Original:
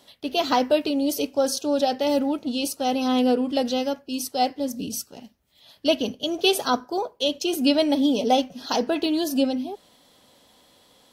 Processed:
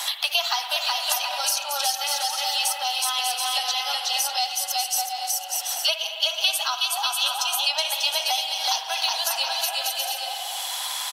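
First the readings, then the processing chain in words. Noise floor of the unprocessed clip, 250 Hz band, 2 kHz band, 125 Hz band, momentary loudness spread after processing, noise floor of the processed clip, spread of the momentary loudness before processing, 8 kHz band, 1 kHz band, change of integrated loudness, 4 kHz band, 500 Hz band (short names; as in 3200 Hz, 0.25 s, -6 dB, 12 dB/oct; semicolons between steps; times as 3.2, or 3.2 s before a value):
-59 dBFS, under -40 dB, +6.0 dB, under -40 dB, 4 LU, -33 dBFS, 8 LU, +10.0 dB, 0.0 dB, +0.5 dB, +7.5 dB, -13.5 dB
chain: bin magnitudes rounded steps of 15 dB; steep high-pass 770 Hz 48 dB/oct; bell 11000 Hz +8.5 dB 2.5 oct; on a send: bouncing-ball echo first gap 0.37 s, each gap 0.6×, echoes 5; on the sum: spring tank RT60 1.5 s, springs 55 ms, chirp 50 ms, DRR 7.5 dB; three-band squash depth 100%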